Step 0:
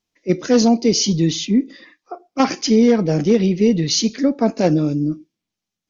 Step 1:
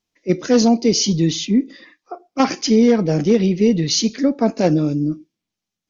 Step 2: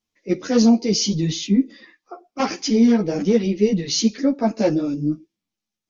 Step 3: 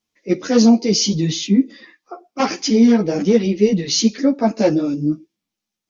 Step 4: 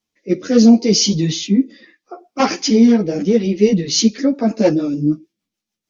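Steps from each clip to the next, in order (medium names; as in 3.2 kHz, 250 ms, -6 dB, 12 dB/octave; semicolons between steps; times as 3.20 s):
no audible change
three-phase chorus
bass shelf 62 Hz -10.5 dB; trim +3.5 dB
rotary cabinet horn 0.7 Hz, later 6.7 Hz, at 3.44 s; trim +3 dB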